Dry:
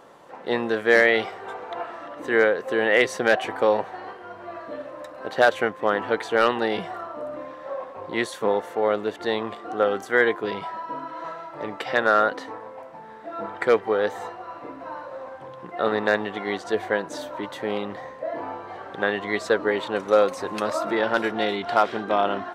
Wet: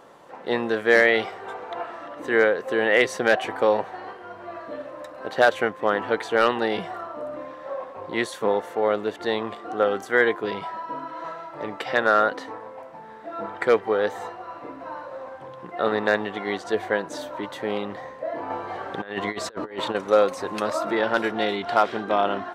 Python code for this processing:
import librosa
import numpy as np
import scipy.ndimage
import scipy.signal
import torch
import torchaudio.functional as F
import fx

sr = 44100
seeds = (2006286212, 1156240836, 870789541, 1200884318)

y = fx.over_compress(x, sr, threshold_db=-29.0, ratio=-0.5, at=(18.5, 19.95))